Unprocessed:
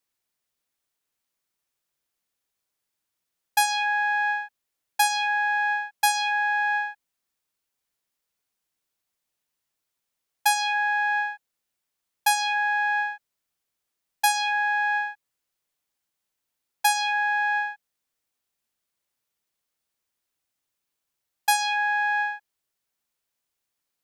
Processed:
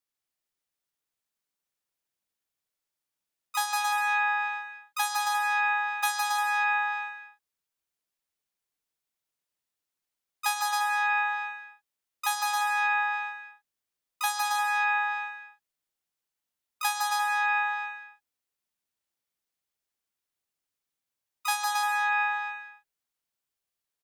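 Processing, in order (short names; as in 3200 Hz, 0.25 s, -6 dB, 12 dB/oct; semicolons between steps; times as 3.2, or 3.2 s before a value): bouncing-ball echo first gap 0.16 s, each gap 0.7×, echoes 5; harmoniser +3 st -17 dB, +7 st -5 dB; gain -8.5 dB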